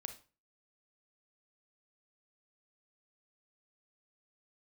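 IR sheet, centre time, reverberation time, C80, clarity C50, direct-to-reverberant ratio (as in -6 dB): 10 ms, 0.35 s, 17.0 dB, 10.5 dB, 7.0 dB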